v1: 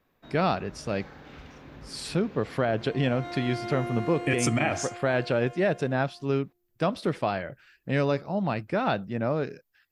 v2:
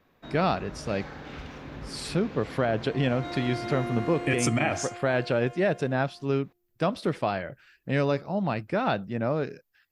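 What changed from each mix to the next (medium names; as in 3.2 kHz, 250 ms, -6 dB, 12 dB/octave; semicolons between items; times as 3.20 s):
first sound +6.0 dB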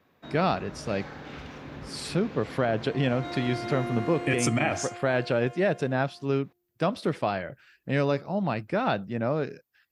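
master: add high-pass 69 Hz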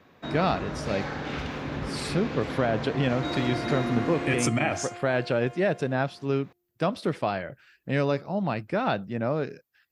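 first sound +8.5 dB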